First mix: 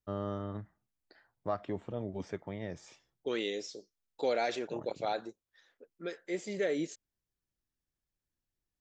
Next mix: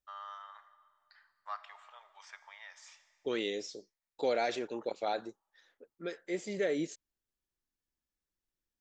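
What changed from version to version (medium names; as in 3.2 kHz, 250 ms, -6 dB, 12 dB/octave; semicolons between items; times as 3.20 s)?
first voice: add steep high-pass 940 Hz 36 dB/octave; reverb: on, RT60 2.3 s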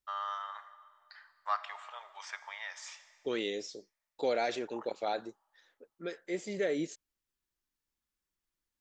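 first voice +8.5 dB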